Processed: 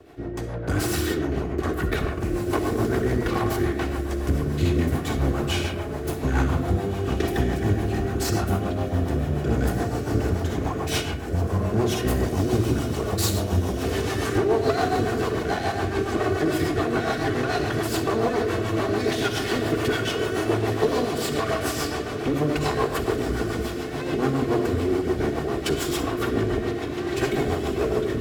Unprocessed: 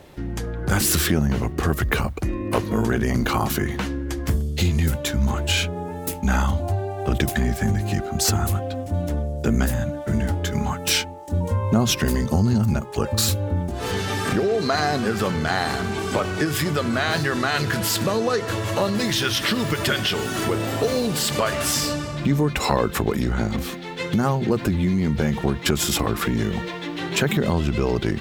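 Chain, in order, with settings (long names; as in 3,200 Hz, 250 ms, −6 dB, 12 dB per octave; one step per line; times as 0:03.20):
lower of the sound and its delayed copy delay 2.7 ms
high-pass filter 64 Hz
high-shelf EQ 2,000 Hz −9 dB
feedback delay with all-pass diffusion 1,790 ms, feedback 63%, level −9.5 dB
comb and all-pass reverb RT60 1.1 s, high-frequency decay 0.45×, pre-delay 20 ms, DRR 2 dB
rotating-speaker cabinet horn 7 Hz
0:12.07–0:14.38: high-shelf EQ 5,200 Hz +6.5 dB
level +2 dB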